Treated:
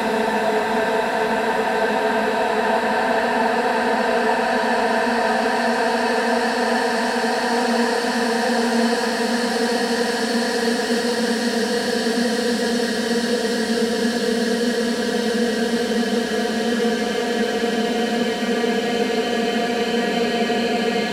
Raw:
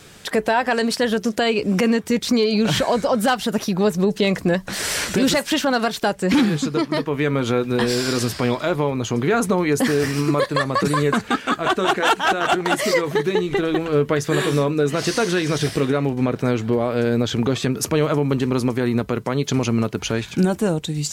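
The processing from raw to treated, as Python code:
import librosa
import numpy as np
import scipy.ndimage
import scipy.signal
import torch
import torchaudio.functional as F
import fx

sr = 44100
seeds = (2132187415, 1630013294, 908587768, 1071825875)

y = fx.vibrato(x, sr, rate_hz=1.6, depth_cents=29.0)
y = fx.paulstretch(y, sr, seeds[0], factor=21.0, window_s=1.0, from_s=0.41)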